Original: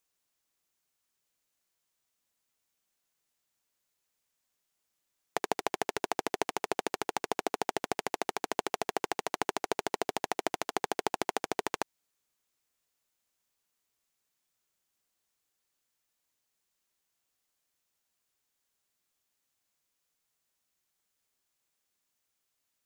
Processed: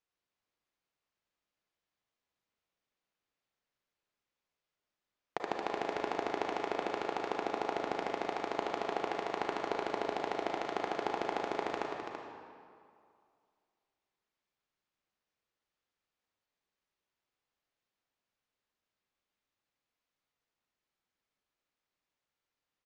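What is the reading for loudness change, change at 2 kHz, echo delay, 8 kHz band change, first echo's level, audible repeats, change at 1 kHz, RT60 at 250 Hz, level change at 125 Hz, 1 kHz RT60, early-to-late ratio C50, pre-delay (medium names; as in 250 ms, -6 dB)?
-2.0 dB, -2.5 dB, 333 ms, -15.0 dB, -6.5 dB, 1, -1.5 dB, 2.2 s, -3.5 dB, 2.4 s, 0.0 dB, 32 ms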